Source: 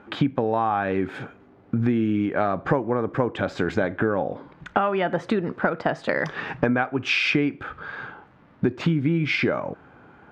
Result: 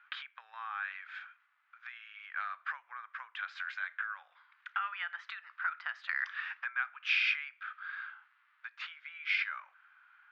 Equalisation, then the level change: Gaussian blur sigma 2 samples; steep high-pass 1300 Hz 36 dB/oct; -4.5 dB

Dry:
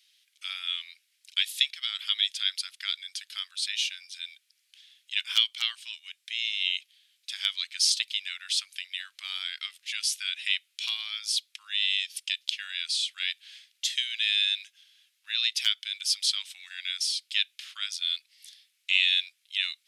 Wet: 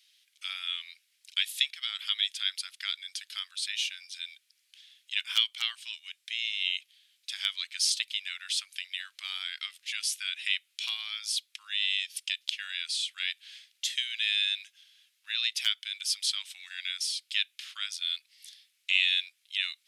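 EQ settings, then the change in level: dynamic EQ 4700 Hz, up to -4 dB, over -36 dBFS, Q 0.97; 0.0 dB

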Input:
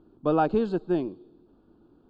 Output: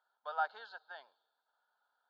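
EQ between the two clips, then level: ladder high-pass 1000 Hz, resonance 50%; fixed phaser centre 1700 Hz, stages 8; +4.5 dB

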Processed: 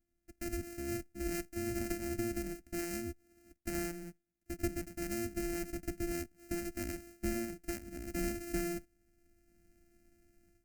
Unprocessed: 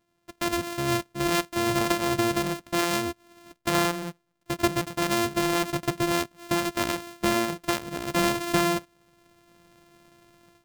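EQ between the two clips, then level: passive tone stack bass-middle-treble 10-0-1; fixed phaser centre 710 Hz, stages 8; +11.5 dB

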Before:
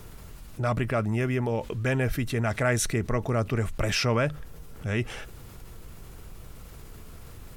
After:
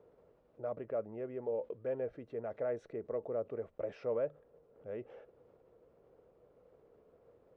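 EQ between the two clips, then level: band-pass 510 Hz, Q 4.3; air absorption 85 m; -2.5 dB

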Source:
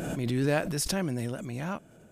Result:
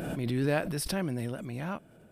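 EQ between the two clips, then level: bell 6800 Hz -13.5 dB 0.36 oct; -1.5 dB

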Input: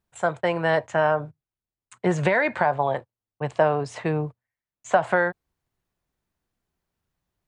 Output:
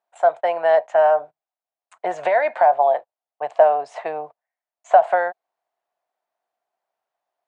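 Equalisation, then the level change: dynamic EQ 1100 Hz, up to -4 dB, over -33 dBFS, Q 1.1; resonant high-pass 690 Hz, resonance Q 4.9; high shelf 4700 Hz -10 dB; -1.0 dB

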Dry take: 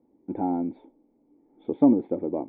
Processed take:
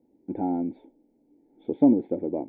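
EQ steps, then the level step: bell 1100 Hz -9.5 dB 0.48 oct; notch 1200 Hz, Q 6; 0.0 dB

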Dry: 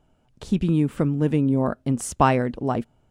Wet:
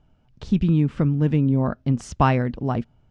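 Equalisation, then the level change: synth low-pass 5600 Hz, resonance Q 2; tone controls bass +13 dB, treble -10 dB; low shelf 490 Hz -8 dB; 0.0 dB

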